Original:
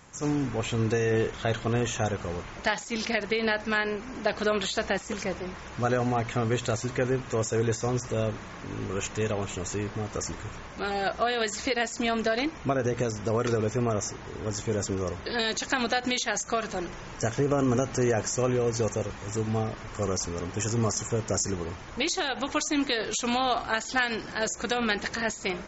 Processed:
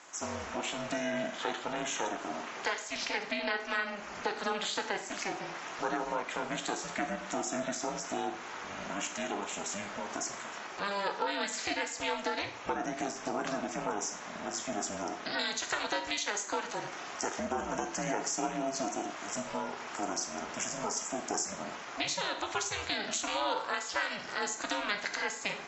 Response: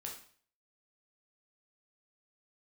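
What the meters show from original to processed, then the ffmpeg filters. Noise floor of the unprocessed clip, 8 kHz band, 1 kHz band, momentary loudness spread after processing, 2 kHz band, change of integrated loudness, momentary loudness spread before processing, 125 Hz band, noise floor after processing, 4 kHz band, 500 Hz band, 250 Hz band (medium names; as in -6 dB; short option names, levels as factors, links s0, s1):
-42 dBFS, no reading, -3.0 dB, 5 LU, -4.5 dB, -6.0 dB, 7 LU, -20.0 dB, -44 dBFS, -3.5 dB, -9.0 dB, -9.0 dB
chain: -filter_complex "[0:a]highpass=f=480:w=0.5412,highpass=f=480:w=1.3066,acompressor=threshold=0.0126:ratio=2,aeval=exprs='val(0)*sin(2*PI*200*n/s)':c=same,asplit=2[s0][s1];[1:a]atrim=start_sample=2205,asetrate=37044,aresample=44100[s2];[s1][s2]afir=irnorm=-1:irlink=0,volume=1.26[s3];[s0][s3]amix=inputs=2:normalize=0"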